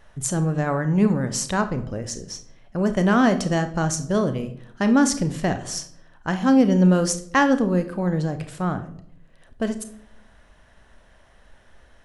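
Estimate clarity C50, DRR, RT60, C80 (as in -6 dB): 13.0 dB, 9.0 dB, 0.65 s, 17.0 dB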